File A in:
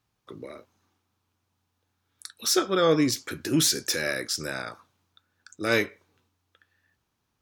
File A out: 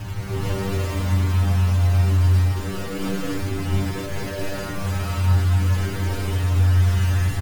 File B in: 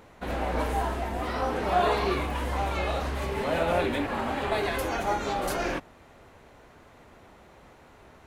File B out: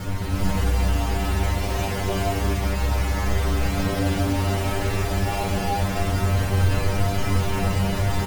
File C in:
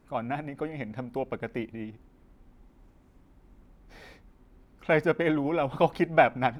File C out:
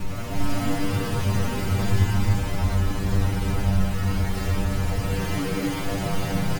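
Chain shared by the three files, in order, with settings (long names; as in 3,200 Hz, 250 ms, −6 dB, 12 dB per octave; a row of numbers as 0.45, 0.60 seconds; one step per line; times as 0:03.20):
sign of each sample alone
Butterworth low-pass 3,100 Hz 96 dB per octave
spectral tilt −4 dB per octave
in parallel at −0.5 dB: brickwall limiter −16.5 dBFS
on the sum: bit reduction 4 bits
parametric band 97 Hz +6 dB 1.9 octaves
stiff-string resonator 95 Hz, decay 0.37 s, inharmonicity 0.002
single-tap delay 327 ms −20.5 dB
reverb whose tail is shaped and stops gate 470 ms rising, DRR −6.5 dB
normalise the peak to −9 dBFS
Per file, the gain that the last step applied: −6.0, −4.0, −5.0 decibels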